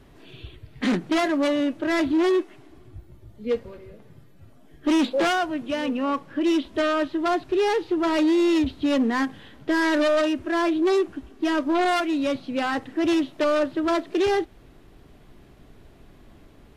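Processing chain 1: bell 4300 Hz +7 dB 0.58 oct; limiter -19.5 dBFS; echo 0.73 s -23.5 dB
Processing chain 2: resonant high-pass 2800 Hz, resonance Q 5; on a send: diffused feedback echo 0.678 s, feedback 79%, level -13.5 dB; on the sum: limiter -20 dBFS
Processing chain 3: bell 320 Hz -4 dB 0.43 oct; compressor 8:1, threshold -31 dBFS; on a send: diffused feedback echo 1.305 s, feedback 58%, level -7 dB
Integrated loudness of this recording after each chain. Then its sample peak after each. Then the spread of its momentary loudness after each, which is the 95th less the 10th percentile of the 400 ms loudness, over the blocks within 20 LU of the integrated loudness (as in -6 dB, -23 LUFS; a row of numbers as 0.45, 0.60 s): -27.0, -29.5, -34.5 LUFS; -19.0, -20.0, -20.5 dBFS; 14, 12, 10 LU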